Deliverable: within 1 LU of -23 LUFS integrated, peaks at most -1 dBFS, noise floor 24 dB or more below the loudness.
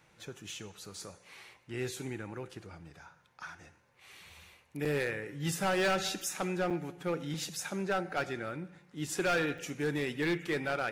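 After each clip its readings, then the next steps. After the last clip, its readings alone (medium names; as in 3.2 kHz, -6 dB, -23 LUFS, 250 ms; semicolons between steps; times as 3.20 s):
clipped samples 1.1%; clipping level -25.0 dBFS; dropouts 3; longest dropout 4.8 ms; loudness -34.5 LUFS; peak level -25.0 dBFS; loudness target -23.0 LUFS
-> clip repair -25 dBFS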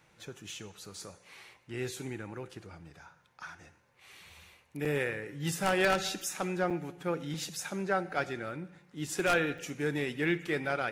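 clipped samples 0.0%; dropouts 3; longest dropout 4.8 ms
-> interpolate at 4.85/6.70/9.58 s, 4.8 ms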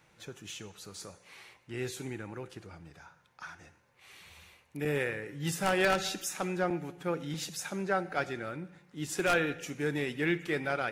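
dropouts 0; loudness -33.0 LUFS; peak level -16.0 dBFS; loudness target -23.0 LUFS
-> trim +10 dB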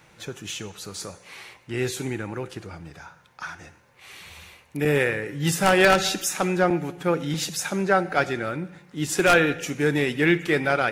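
loudness -23.0 LUFS; peak level -6.0 dBFS; noise floor -56 dBFS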